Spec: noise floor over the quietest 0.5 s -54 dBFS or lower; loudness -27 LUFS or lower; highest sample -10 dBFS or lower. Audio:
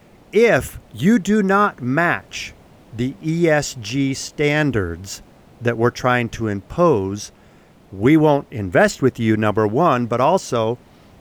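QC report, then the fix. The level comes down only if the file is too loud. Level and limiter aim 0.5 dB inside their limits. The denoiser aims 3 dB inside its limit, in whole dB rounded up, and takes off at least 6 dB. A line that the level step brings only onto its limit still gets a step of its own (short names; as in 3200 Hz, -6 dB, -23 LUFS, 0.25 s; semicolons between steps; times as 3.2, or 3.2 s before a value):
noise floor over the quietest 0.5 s -49 dBFS: fail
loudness -18.5 LUFS: fail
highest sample -4.0 dBFS: fail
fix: gain -9 dB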